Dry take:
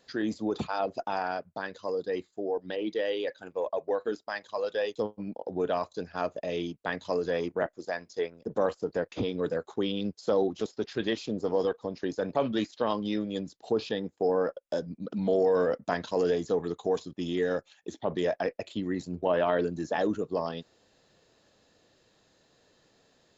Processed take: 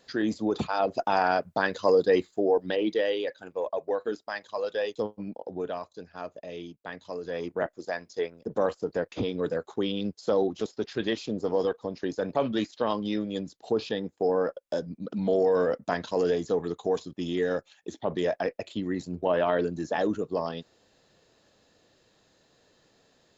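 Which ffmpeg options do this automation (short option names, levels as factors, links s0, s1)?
-af "volume=8.91,afade=t=in:st=0.73:d=1.13:silence=0.398107,afade=t=out:st=1.86:d=1.43:silence=0.298538,afade=t=out:st=5.22:d=0.63:silence=0.421697,afade=t=in:st=7.21:d=0.47:silence=0.398107"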